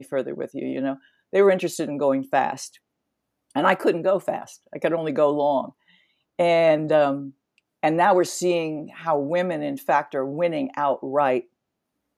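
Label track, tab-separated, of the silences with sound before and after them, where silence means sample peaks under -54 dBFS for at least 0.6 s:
2.780000	3.510000	silence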